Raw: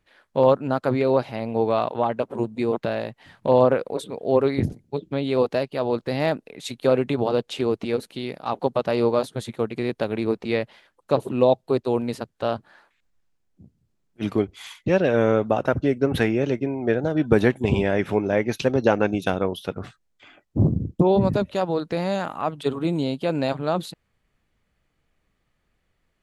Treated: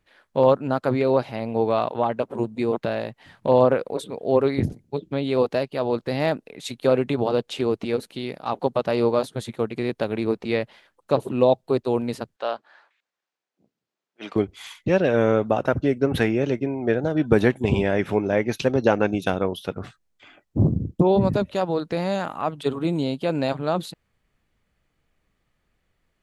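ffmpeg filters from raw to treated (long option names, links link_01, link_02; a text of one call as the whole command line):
ffmpeg -i in.wav -filter_complex "[0:a]asettb=1/sr,asplit=3[link_01][link_02][link_03];[link_01]atrim=end=12.364[link_04];[link_02]atrim=start=12.36:end=14.36,asetpts=PTS-STARTPTS,afade=type=in:duration=0.004:curve=qsin,afade=type=out:start_time=1.996:duration=0.004:curve=qsin,highpass=520,lowpass=5700[link_05];[link_03]atrim=start=14.356[link_06];[link_04][link_05]acrossfade=duration=0.004:curve1=hsin:curve2=qsin[link_07];[link_07][link_06]acrossfade=duration=0.004:curve1=qsin:curve2=hsin" out.wav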